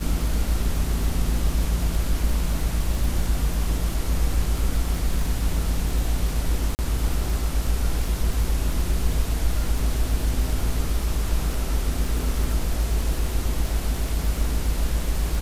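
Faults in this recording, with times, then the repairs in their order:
surface crackle 38 per second −27 dBFS
0:06.75–0:06.79: drop-out 39 ms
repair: click removal
repair the gap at 0:06.75, 39 ms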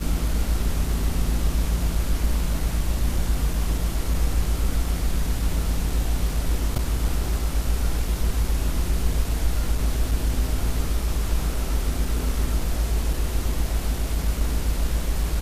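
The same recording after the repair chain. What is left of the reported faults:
none of them is left

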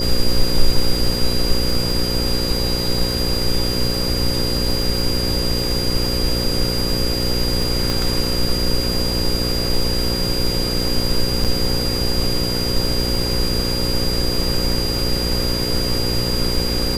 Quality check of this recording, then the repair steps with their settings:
mains buzz 60 Hz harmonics 9 −24 dBFS
surface crackle 50 per second −25 dBFS
whistle 4,800 Hz −23 dBFS
0:07.90: click
0:11.44–0:11.45: drop-out 7 ms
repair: click removal
hum removal 60 Hz, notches 9
notch filter 4,800 Hz, Q 30
repair the gap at 0:11.44, 7 ms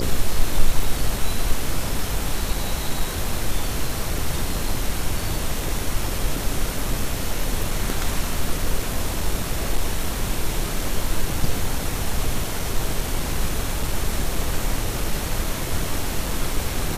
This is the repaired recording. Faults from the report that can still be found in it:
0:07.90: click

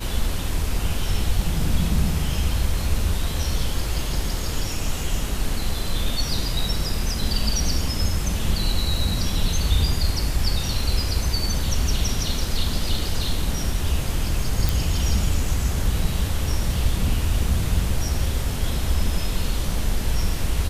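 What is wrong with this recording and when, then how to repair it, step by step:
0:14.69: click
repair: click removal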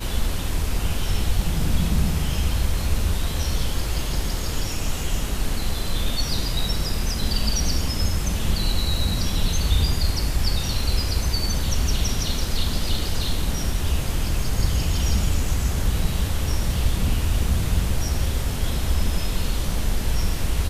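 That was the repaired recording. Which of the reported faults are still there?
none of them is left

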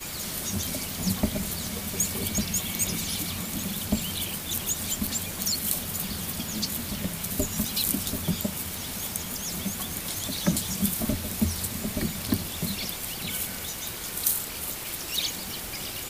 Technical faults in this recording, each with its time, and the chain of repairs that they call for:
surface crackle 25 per second −34 dBFS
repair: click removal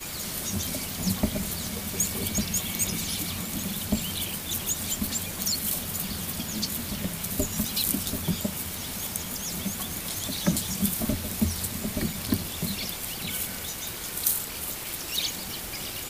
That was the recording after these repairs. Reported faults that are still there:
none of them is left

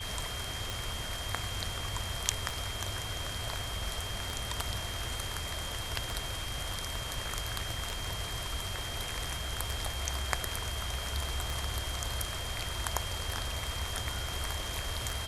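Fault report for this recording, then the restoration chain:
scratch tick 33 1/3 rpm
whistle 3,200 Hz −41 dBFS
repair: click removal
notch filter 3,200 Hz, Q 30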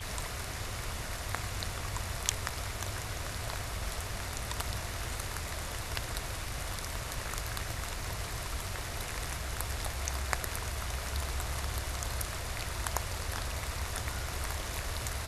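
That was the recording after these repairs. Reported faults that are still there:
none of them is left

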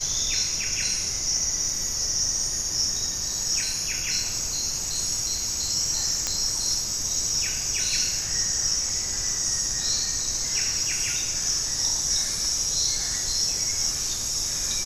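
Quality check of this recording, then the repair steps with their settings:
0:06.27: click −10 dBFS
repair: click removal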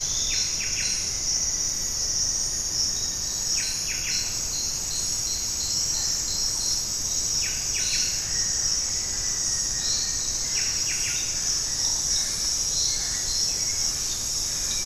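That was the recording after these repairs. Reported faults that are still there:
none of them is left

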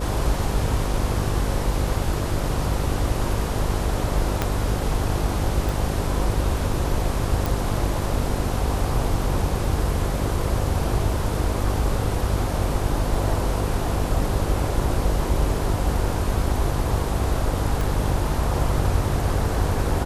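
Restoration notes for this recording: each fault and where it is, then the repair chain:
mains buzz 50 Hz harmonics 11 −27 dBFS
0:04.42: click −7 dBFS
0:05.69: click
0:07.46: click
0:17.81: click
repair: click removal
hum removal 50 Hz, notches 11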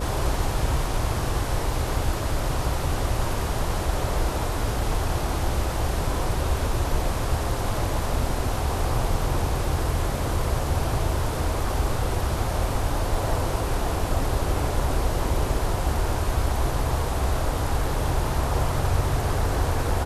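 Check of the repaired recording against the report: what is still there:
0:04.42: click
0:05.69: click
0:17.81: click

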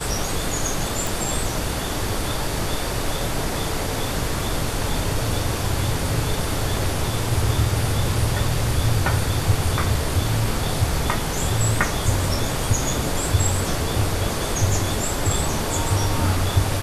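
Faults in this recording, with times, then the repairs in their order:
0:01.07: click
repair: click removal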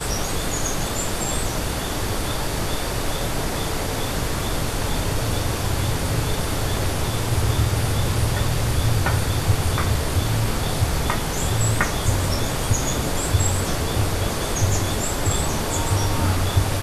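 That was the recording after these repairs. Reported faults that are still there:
none of them is left

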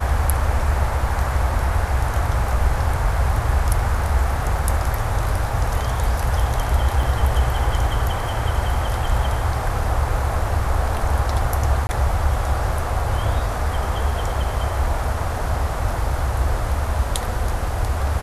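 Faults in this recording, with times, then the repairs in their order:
0:07.03: drop-out 2.3 ms
0:11.87–0:11.89: drop-out 20 ms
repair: repair the gap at 0:07.03, 2.3 ms
repair the gap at 0:11.87, 20 ms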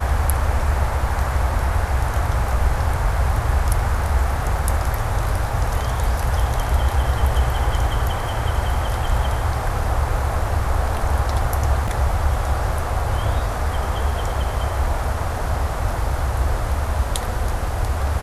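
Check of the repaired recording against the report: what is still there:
none of them is left

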